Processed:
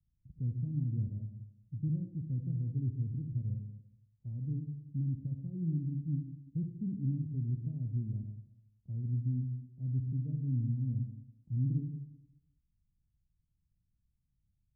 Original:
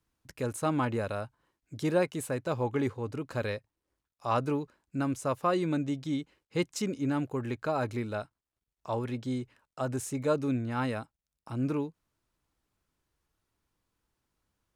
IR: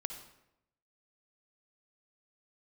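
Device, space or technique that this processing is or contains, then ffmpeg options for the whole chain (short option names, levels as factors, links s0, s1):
club heard from the street: -filter_complex "[0:a]alimiter=limit=0.0794:level=0:latency=1:release=176,lowpass=f=170:w=0.5412,lowpass=f=170:w=1.3066[s0];[1:a]atrim=start_sample=2205[s1];[s0][s1]afir=irnorm=-1:irlink=0,volume=2"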